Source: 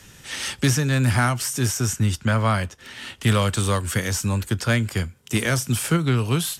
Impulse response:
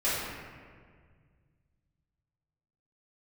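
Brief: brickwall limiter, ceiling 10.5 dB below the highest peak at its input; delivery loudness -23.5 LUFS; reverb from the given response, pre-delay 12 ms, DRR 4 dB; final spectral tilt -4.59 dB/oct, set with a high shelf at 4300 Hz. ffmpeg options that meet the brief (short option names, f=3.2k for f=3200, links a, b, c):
-filter_complex "[0:a]highshelf=f=4.3k:g=3.5,alimiter=limit=-17dB:level=0:latency=1,asplit=2[a][b];[1:a]atrim=start_sample=2205,adelay=12[c];[b][c]afir=irnorm=-1:irlink=0,volume=-15.5dB[d];[a][d]amix=inputs=2:normalize=0,volume=1.5dB"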